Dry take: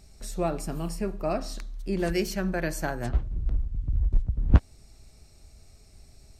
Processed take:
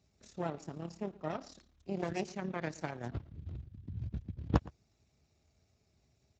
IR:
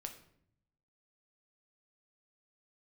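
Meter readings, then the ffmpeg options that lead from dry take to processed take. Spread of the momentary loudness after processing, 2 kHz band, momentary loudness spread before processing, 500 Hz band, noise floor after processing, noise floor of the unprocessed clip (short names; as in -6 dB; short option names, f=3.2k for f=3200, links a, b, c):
13 LU, -10.0 dB, 9 LU, -9.5 dB, -75 dBFS, -54 dBFS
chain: -filter_complex "[0:a]aeval=exprs='0.596*(cos(1*acos(clip(val(0)/0.596,-1,1)))-cos(1*PI/2))+0.133*(cos(3*acos(clip(val(0)/0.596,-1,1)))-cos(3*PI/2))+0.0168*(cos(5*acos(clip(val(0)/0.596,-1,1)))-cos(5*PI/2))+0.133*(cos(6*acos(clip(val(0)/0.596,-1,1)))-cos(6*PI/2))':c=same,asplit=2[a][b];[b]adelay=116.6,volume=-21dB,highshelf=f=4k:g=-2.62[c];[a][c]amix=inputs=2:normalize=0,volume=-7dB" -ar 16000 -c:a libspeex -b:a 17k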